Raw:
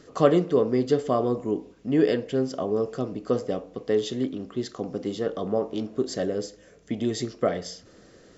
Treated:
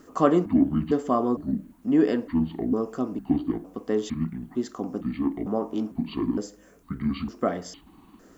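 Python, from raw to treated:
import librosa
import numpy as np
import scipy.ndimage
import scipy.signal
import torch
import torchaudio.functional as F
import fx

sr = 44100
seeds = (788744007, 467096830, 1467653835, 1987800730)

y = fx.pitch_trill(x, sr, semitones=-8.5, every_ms=455)
y = fx.quant_dither(y, sr, seeds[0], bits=12, dither='triangular')
y = fx.graphic_eq(y, sr, hz=(125, 250, 500, 1000, 2000, 4000), db=(-11, 6, -8, 5, -4, -10))
y = y * 10.0 ** (2.0 / 20.0)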